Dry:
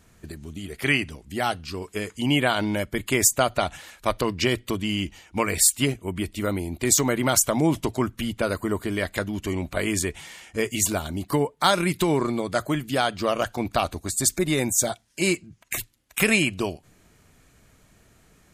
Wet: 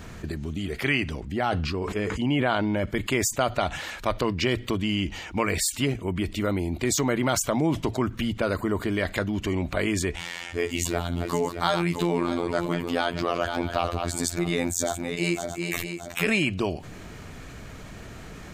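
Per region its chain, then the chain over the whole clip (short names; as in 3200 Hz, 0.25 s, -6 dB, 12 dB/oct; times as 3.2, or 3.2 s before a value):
1.2–2.86 high shelf 2800 Hz -9 dB + sustainer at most 43 dB/s
10.16–16.27 regenerating reverse delay 0.312 s, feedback 43%, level -10 dB + robotiser 86.1 Hz
whole clip: bell 11000 Hz -13 dB 1.2 oct; fast leveller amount 50%; gain -3.5 dB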